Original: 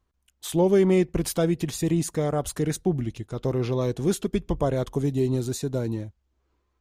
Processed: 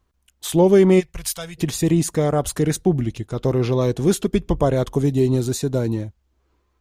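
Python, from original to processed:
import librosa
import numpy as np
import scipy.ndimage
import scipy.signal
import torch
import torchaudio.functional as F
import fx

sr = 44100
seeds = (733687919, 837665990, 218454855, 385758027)

y = fx.tone_stack(x, sr, knobs='10-0-10', at=(0.99, 1.57), fade=0.02)
y = F.gain(torch.from_numpy(y), 6.0).numpy()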